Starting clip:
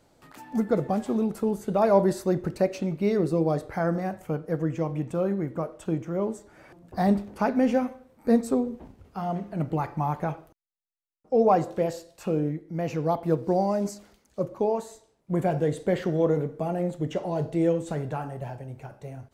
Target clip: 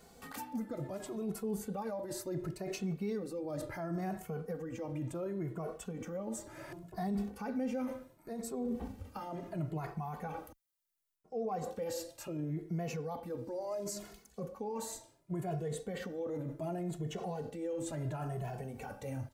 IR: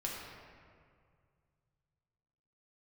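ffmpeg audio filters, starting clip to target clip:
-filter_complex "[0:a]highshelf=f=7500:g=8.5,areverse,acompressor=threshold=0.0251:ratio=12,areverse,alimiter=level_in=3.16:limit=0.0631:level=0:latency=1:release=41,volume=0.316,asplit=2[s0][s1];[s1]adelay=2.3,afreqshift=0.7[s2];[s0][s2]amix=inputs=2:normalize=1,volume=2"

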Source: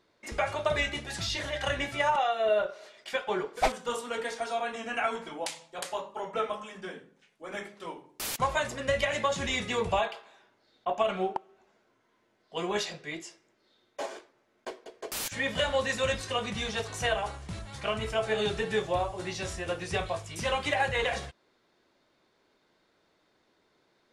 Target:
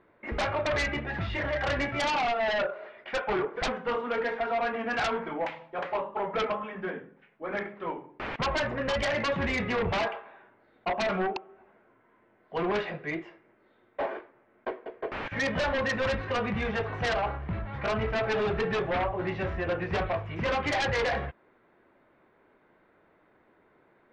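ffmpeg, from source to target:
-filter_complex "[0:a]lowpass=f=2200:w=0.5412,lowpass=f=2200:w=1.3066,asplit=2[s0][s1];[s1]aeval=exprs='0.2*sin(PI/2*5.01*val(0)/0.2)':c=same,volume=0.631[s2];[s0][s2]amix=inputs=2:normalize=0,volume=0.376"

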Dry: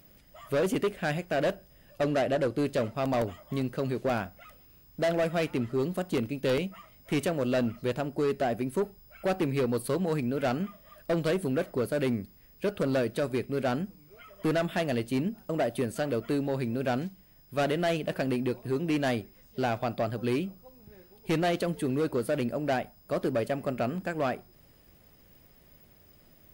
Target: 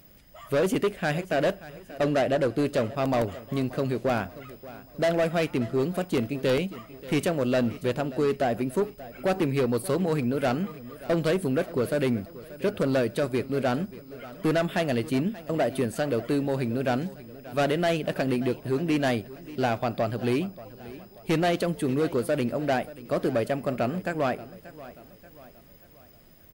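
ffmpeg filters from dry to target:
-af "aecho=1:1:583|1166|1749|2332:0.133|0.0613|0.0282|0.013,volume=1.41"

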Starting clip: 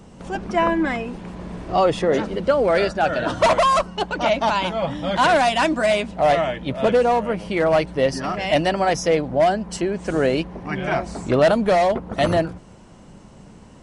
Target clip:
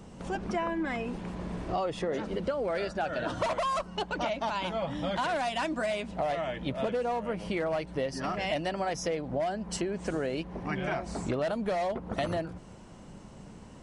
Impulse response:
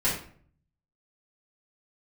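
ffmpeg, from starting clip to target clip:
-af "acompressor=threshold=0.0562:ratio=6,volume=0.668"

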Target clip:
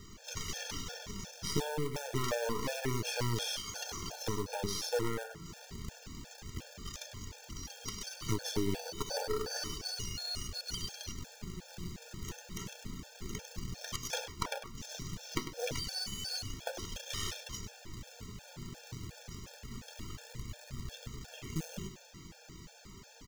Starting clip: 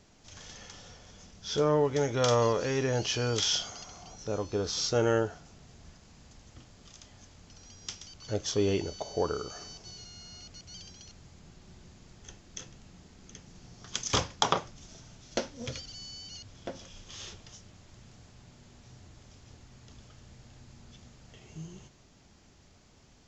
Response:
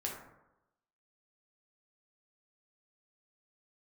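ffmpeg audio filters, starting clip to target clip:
-filter_complex "[0:a]acrusher=bits=3:mode=log:mix=0:aa=0.000001,equalizer=f=700:t=o:w=0.42:g=-6.5,acompressor=threshold=0.0112:ratio=10,flanger=delay=1.6:depth=4.7:regen=56:speed=0.29:shape=sinusoidal,acrossover=split=2700[s0][s1];[s1]acompressor=threshold=0.00501:ratio=4:attack=1:release=60[s2];[s0][s2]amix=inputs=2:normalize=0,aeval=exprs='0.0531*(cos(1*acos(clip(val(0)/0.0531,-1,1)))-cos(1*PI/2))+0.00841*(cos(8*acos(clip(val(0)/0.0531,-1,1)))-cos(8*PI/2))':c=same,aecho=1:1:100:0.299,afftfilt=real='re*gt(sin(2*PI*2.8*pts/sr)*(1-2*mod(floor(b*sr/1024/460),2)),0)':imag='im*gt(sin(2*PI*2.8*pts/sr)*(1-2*mod(floor(b*sr/1024/460),2)),0)':win_size=1024:overlap=0.75,volume=5.01"

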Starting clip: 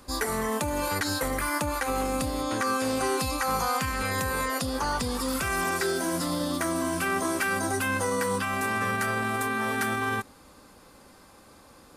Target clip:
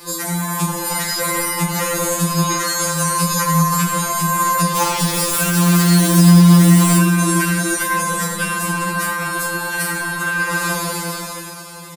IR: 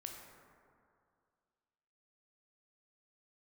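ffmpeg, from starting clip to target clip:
-filter_complex "[0:a]highshelf=f=3700:g=7.5[s0];[1:a]atrim=start_sample=2205,asetrate=74970,aresample=44100[s1];[s0][s1]afir=irnorm=-1:irlink=0,acrossover=split=170[s2][s3];[s3]acompressor=threshold=0.00631:ratio=10[s4];[s2][s4]amix=inputs=2:normalize=0,highshelf=f=8100:g=3,flanger=delay=4.7:depth=9:regen=87:speed=1.5:shape=triangular,highpass=f=47:p=1,asplit=3[s5][s6][s7];[s5]afade=t=out:st=4.75:d=0.02[s8];[s6]acrusher=bits=7:mix=0:aa=0.5,afade=t=in:st=4.75:d=0.02,afade=t=out:st=6.97:d=0.02[s9];[s7]afade=t=in:st=6.97:d=0.02[s10];[s8][s9][s10]amix=inputs=3:normalize=0,dynaudnorm=f=150:g=13:m=5.62,aecho=1:1:179:0.178,alimiter=level_in=50.1:limit=0.891:release=50:level=0:latency=1,afftfilt=real='re*2.83*eq(mod(b,8),0)':imag='im*2.83*eq(mod(b,8),0)':win_size=2048:overlap=0.75,volume=0.562"

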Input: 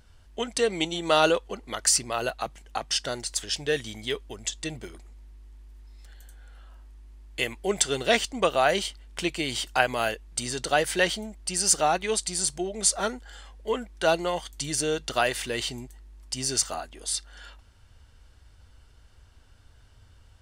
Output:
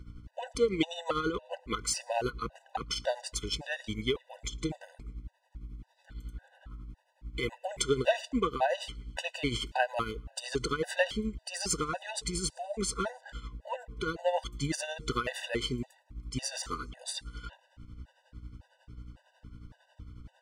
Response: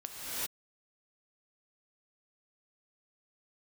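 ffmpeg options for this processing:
-filter_complex "[0:a]lowpass=f=2100:p=1,acompressor=threshold=0.0447:ratio=4,aeval=exprs='0.447*(cos(1*acos(clip(val(0)/0.447,-1,1)))-cos(1*PI/2))+0.0447*(cos(3*acos(clip(val(0)/0.447,-1,1)))-cos(3*PI/2))':c=same,aeval=exprs='val(0)+0.002*(sin(2*PI*60*n/s)+sin(2*PI*2*60*n/s)/2+sin(2*PI*3*60*n/s)/3+sin(2*PI*4*60*n/s)/4+sin(2*PI*5*60*n/s)/5)':c=same,asplit=2[s0][s1];[s1]asoftclip=type=tanh:threshold=0.0237,volume=0.398[s2];[s0][s2]amix=inputs=2:normalize=0,tremolo=f=11:d=0.62,asplit=2[s3][s4];[1:a]atrim=start_sample=2205,afade=t=out:st=0.24:d=0.01,atrim=end_sample=11025,adelay=113[s5];[s4][s5]afir=irnorm=-1:irlink=0,volume=0.0531[s6];[s3][s6]amix=inputs=2:normalize=0,afftfilt=real='re*gt(sin(2*PI*1.8*pts/sr)*(1-2*mod(floor(b*sr/1024/500),2)),0)':imag='im*gt(sin(2*PI*1.8*pts/sr)*(1-2*mod(floor(b*sr/1024/500),2)),0)':win_size=1024:overlap=0.75,volume=2.37"

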